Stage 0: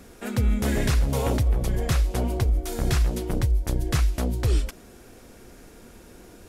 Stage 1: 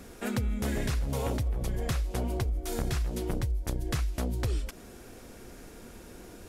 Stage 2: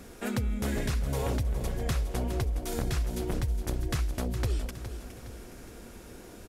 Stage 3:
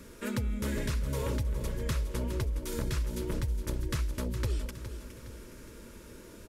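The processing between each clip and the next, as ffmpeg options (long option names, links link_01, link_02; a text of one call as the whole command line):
ffmpeg -i in.wav -af "acompressor=threshold=-27dB:ratio=6" out.wav
ffmpeg -i in.wav -af "aecho=1:1:414|828|1242|1656|2070:0.282|0.13|0.0596|0.0274|0.0126" out.wav
ffmpeg -i in.wav -af "asuperstop=centerf=750:order=20:qfactor=4.6,volume=-2dB" out.wav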